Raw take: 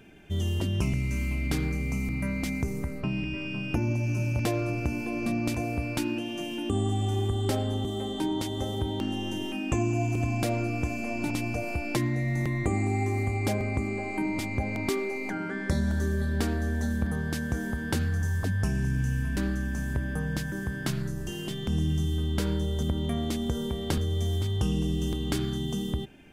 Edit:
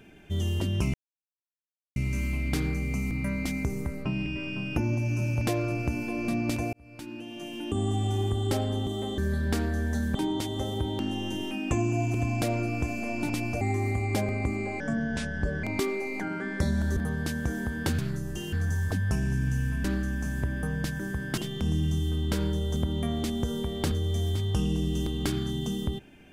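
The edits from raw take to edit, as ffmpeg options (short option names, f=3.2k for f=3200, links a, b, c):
-filter_complex "[0:a]asplit=12[a][b][c][d][e][f][g][h][i][j][k][l];[a]atrim=end=0.94,asetpts=PTS-STARTPTS,afade=t=out:st=0.936:d=0.004:c=hsin,apad=pad_dur=1.02[m];[b]atrim=start=0.94:end=5.71,asetpts=PTS-STARTPTS,afade=t=in:d=0.004:c=hsin,afade=t=out:st=4.766:d=0.004:c=hsin[n];[c]atrim=start=5.71:end=8.162,asetpts=PTS-STARTPTS,afade=t=in:d=1.21[o];[d]atrim=start=16.058:end=17.032[p];[e]atrim=start=8.158:end=11.622[q];[f]atrim=start=12.928:end=14.124[r];[g]atrim=start=14.12:end=14.73,asetpts=PTS-STARTPTS,asetrate=32193,aresample=44100[s];[h]atrim=start=14.726:end=16.062[t];[i]atrim=start=17.028:end=18.052[u];[j]atrim=start=20.898:end=21.442[v];[k]atrim=start=18.048:end=20.902[w];[l]atrim=start=21.438[x];[m][n][o]concat=n=3:v=0:a=1[y];[y][p]acrossfade=d=0.004:c1=hsin:c2=hsin[z];[z][q]acrossfade=d=0.004:c1=hsin:c2=hsin[aa];[aa][r]acrossfade=d=0.004:c1=hsin:c2=hsin[ab];[ab][s]acrossfade=d=0.004:c1=hsin:c2=hsin[ac];[ac][t]acrossfade=d=0.004:c1=hsin:c2=hsin[ad];[ad][u]acrossfade=d=0.004:c1=hsin:c2=hsin[ae];[ae][v]acrossfade=d=0.004:c1=hsin:c2=hsin[af];[af][w]acrossfade=d=0.004:c1=hsin:c2=hsin[ag];[ag][x]acrossfade=d=0.004:c1=hsin:c2=hsin"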